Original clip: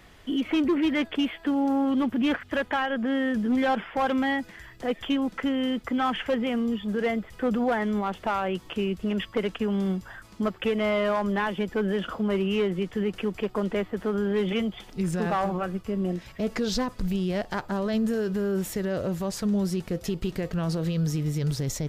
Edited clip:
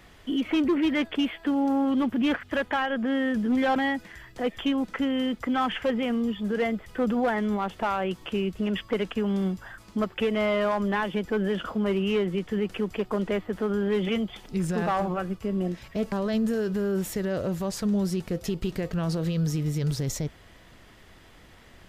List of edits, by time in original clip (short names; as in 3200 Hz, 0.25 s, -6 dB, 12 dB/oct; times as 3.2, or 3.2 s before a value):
3.76–4.2 cut
16.56–17.72 cut